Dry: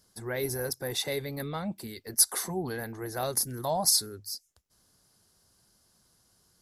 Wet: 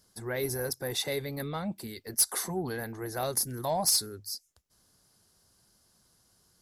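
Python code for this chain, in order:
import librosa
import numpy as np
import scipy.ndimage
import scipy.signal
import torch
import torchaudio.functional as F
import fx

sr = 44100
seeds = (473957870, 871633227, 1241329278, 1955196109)

y = 10.0 ** (-16.0 / 20.0) * np.tanh(x / 10.0 ** (-16.0 / 20.0))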